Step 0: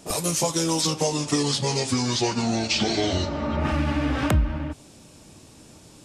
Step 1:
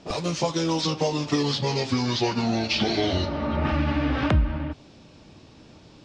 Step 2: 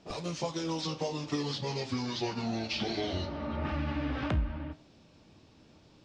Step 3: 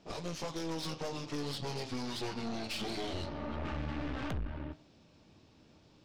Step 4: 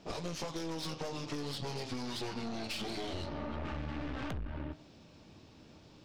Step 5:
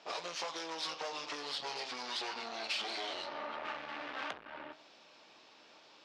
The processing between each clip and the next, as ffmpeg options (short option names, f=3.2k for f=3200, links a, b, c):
-af "lowpass=f=4.9k:w=0.5412,lowpass=f=4.9k:w=1.3066"
-af "flanger=delay=9.1:depth=8.9:regen=-76:speed=0.56:shape=triangular,volume=-5dB"
-af "aeval=exprs='(tanh(56.2*val(0)+0.7)-tanh(0.7))/56.2':c=same,volume=1dB"
-af "acompressor=threshold=-40dB:ratio=6,volume=5dB"
-af "highpass=750,lowpass=5.4k,volume=5dB"